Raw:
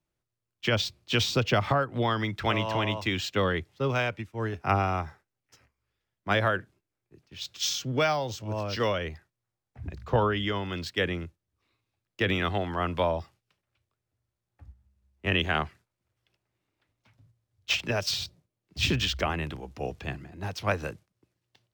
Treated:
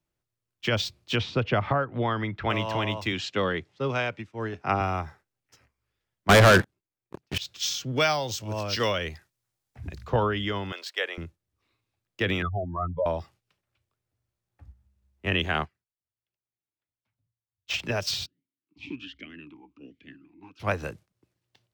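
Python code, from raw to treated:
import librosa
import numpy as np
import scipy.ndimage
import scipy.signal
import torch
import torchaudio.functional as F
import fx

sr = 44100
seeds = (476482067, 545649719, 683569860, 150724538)

y = fx.lowpass(x, sr, hz=2600.0, slope=12, at=(1.15, 2.49), fade=0.02)
y = fx.bandpass_edges(y, sr, low_hz=120.0, high_hz=6800.0, at=(3.12, 4.81))
y = fx.leveller(y, sr, passes=5, at=(6.29, 7.38))
y = fx.high_shelf(y, sr, hz=2700.0, db=9.5, at=(7.96, 10.07))
y = fx.highpass(y, sr, hz=500.0, slope=24, at=(10.72, 11.18))
y = fx.spec_expand(y, sr, power=3.5, at=(12.42, 13.06))
y = fx.upward_expand(y, sr, threshold_db=-56.0, expansion=1.5, at=(15.64, 17.73), fade=0.02)
y = fx.vowel_sweep(y, sr, vowels='i-u', hz=1.3, at=(18.25, 20.59), fade=0.02)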